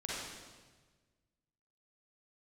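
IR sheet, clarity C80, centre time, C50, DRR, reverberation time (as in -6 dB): 0.0 dB, 108 ms, -4.5 dB, -7.0 dB, 1.4 s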